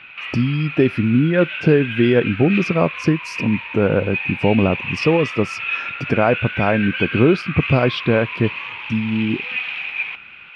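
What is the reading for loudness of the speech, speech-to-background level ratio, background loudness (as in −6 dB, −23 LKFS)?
−19.0 LKFS, 7.0 dB, −26.0 LKFS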